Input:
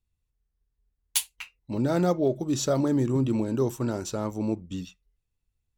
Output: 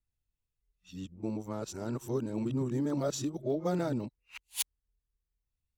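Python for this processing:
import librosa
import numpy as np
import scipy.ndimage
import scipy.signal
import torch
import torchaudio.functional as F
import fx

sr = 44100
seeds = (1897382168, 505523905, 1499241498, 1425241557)

y = x[::-1].copy()
y = F.gain(torch.from_numpy(y), -7.5).numpy()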